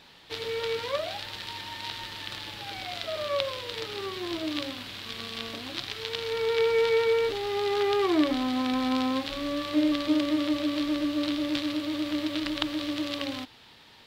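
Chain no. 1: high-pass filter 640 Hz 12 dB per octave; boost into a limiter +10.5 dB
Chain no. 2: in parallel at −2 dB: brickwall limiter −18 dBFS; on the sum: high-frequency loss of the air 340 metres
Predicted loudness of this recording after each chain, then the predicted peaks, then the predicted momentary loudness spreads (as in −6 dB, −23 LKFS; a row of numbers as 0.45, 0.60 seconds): −23.0, −25.5 LKFS; −1.0, −11.0 dBFS; 7, 15 LU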